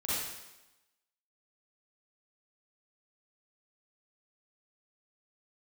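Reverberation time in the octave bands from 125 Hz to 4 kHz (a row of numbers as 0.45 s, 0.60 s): 0.85 s, 1.0 s, 1.0 s, 1.0 s, 1.0 s, 0.95 s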